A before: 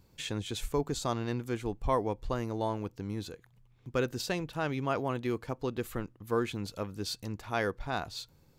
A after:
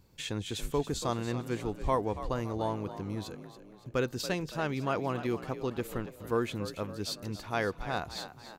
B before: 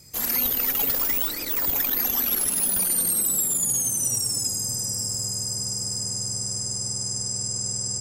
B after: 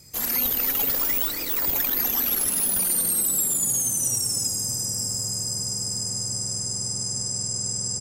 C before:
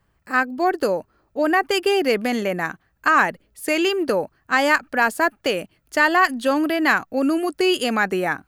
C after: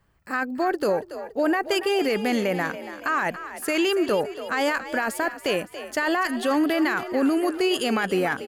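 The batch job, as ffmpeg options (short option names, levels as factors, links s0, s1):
-filter_complex "[0:a]alimiter=limit=0.178:level=0:latency=1:release=13,asplit=6[s0][s1][s2][s3][s4][s5];[s1]adelay=282,afreqshift=46,volume=0.237[s6];[s2]adelay=564,afreqshift=92,volume=0.119[s7];[s3]adelay=846,afreqshift=138,volume=0.0596[s8];[s4]adelay=1128,afreqshift=184,volume=0.0295[s9];[s5]adelay=1410,afreqshift=230,volume=0.0148[s10];[s0][s6][s7][s8][s9][s10]amix=inputs=6:normalize=0"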